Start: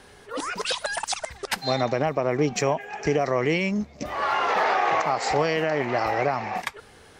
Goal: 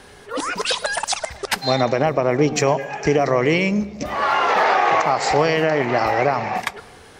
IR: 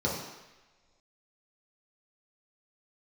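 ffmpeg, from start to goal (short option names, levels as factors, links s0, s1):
-filter_complex "[0:a]asplit=2[s0][s1];[1:a]atrim=start_sample=2205,adelay=106[s2];[s1][s2]afir=irnorm=-1:irlink=0,volume=0.0398[s3];[s0][s3]amix=inputs=2:normalize=0,volume=1.88"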